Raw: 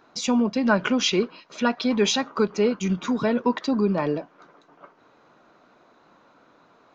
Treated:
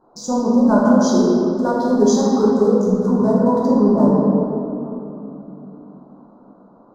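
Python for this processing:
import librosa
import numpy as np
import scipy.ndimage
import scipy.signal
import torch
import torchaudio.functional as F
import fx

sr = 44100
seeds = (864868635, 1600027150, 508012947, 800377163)

y = fx.wiener(x, sr, points=15)
y = scipy.signal.sosfilt(scipy.signal.cheby1(2, 1.0, [960.0, 6100.0], 'bandstop', fs=sr, output='sos'), y)
y = fx.room_shoebox(y, sr, seeds[0], volume_m3=120.0, walls='hard', distance_m=0.94)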